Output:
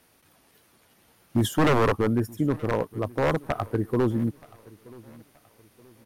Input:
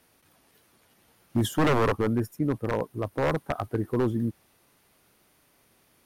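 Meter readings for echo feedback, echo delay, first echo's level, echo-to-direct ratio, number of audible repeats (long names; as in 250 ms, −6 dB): 39%, 926 ms, −23.0 dB, −22.5 dB, 2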